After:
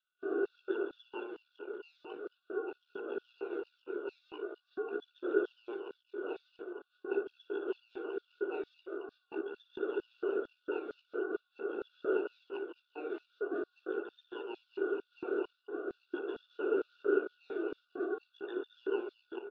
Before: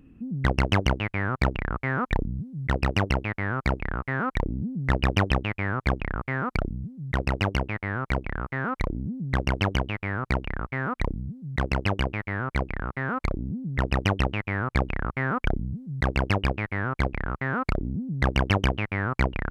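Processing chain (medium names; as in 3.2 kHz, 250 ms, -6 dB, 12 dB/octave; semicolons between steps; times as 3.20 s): rotating-head pitch shifter +2.5 st; wind noise 450 Hz -32 dBFS; in parallel at -7 dB: fuzz box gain 43 dB, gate -50 dBFS; on the sum: rotary cabinet horn 5 Hz; peak limiter -15.5 dBFS, peak gain reduction 10 dB; formant shift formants -5 st; vowel filter e; ring modulator 930 Hz; on a send: loudspeakers at several distances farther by 20 m -10 dB, 76 m -6 dB; on the sum: LFO high-pass square 2.2 Hz 310–4600 Hz; bass shelf 380 Hz +9.5 dB; spectral contrast expander 1.5:1; trim +1 dB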